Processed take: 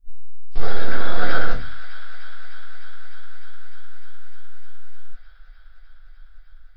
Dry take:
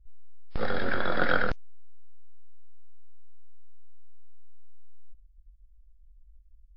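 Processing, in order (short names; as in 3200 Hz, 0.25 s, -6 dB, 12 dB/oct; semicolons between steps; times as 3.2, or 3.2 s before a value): high shelf 4300 Hz +11.5 dB; thin delay 0.303 s, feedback 84%, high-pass 1500 Hz, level -12 dB; reverb RT60 0.35 s, pre-delay 3 ms, DRR -7.5 dB; gain -8 dB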